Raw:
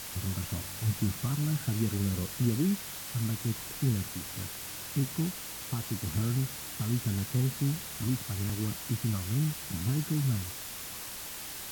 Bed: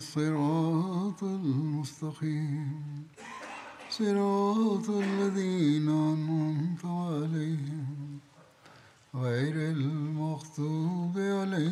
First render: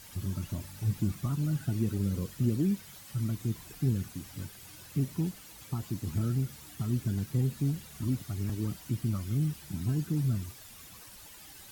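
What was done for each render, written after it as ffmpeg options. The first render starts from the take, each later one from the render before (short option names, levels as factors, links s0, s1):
-af "afftdn=nr=12:nf=-41"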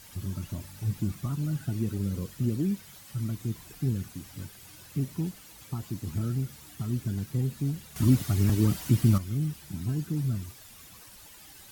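-filter_complex "[0:a]asplit=3[s0][s1][s2];[s0]atrim=end=7.962[s3];[s1]atrim=start=7.958:end=9.182,asetpts=PTS-STARTPTS,volume=2.99[s4];[s2]atrim=start=9.178[s5];[s3][s4]acrossfade=d=0.004:c1=hsin:c2=hsin[s6];[s6][s5]acrossfade=d=0.004:c1=hsin:c2=hsin"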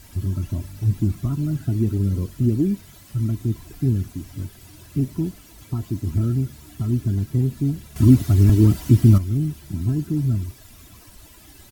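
-af "lowshelf=f=440:g=11.5,aecho=1:1:3:0.44"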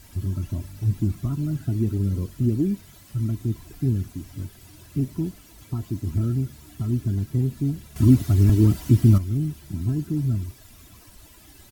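-af "volume=0.75"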